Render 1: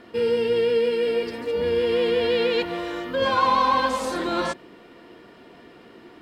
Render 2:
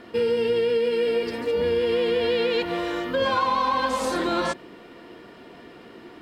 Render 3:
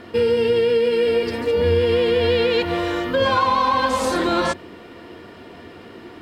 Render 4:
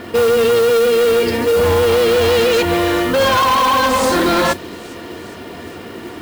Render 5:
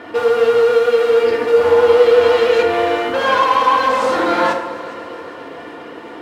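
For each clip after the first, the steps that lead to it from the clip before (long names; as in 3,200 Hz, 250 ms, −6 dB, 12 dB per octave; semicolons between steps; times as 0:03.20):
downward compressor, threshold −22 dBFS, peak gain reduction 7 dB; level +2.5 dB
parametric band 88 Hz +14 dB 0.37 octaves; level +4.5 dB
harmonic generator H 5 −9 dB, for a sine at −7.5 dBFS; delay with a high-pass on its return 408 ms, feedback 65%, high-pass 3,700 Hz, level −17.5 dB; noise that follows the level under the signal 19 dB
resonant band-pass 1,000 Hz, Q 0.53; echo machine with several playback heads 136 ms, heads all three, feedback 71%, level −22 dB; feedback delay network reverb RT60 0.94 s, low-frequency decay 0.8×, high-frequency decay 0.55×, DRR 1.5 dB; level −1.5 dB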